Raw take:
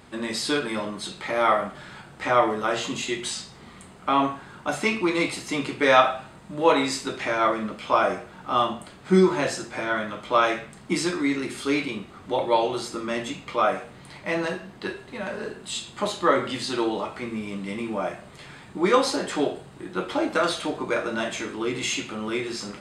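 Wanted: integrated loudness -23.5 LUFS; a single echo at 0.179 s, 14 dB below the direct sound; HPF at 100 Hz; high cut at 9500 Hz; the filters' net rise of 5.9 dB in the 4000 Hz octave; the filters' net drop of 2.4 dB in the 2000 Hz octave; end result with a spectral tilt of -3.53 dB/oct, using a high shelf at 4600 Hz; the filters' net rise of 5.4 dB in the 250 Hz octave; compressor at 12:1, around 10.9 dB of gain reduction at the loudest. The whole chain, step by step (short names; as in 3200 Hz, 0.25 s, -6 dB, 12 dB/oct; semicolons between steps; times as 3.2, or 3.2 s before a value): HPF 100 Hz; LPF 9500 Hz; bell 250 Hz +7.5 dB; bell 2000 Hz -6 dB; bell 4000 Hz +5.5 dB; high shelf 4600 Hz +7 dB; compressor 12:1, threshold -20 dBFS; echo 0.179 s -14 dB; gain +3 dB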